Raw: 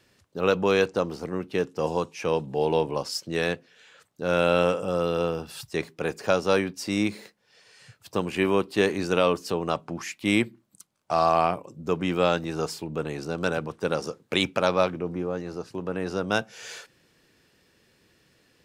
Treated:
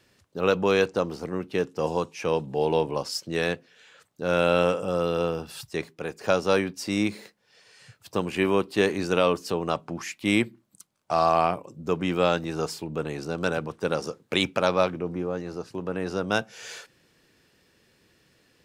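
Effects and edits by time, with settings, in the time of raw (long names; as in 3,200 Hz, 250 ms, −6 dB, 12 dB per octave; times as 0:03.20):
0:05.56–0:06.21: fade out, to −6.5 dB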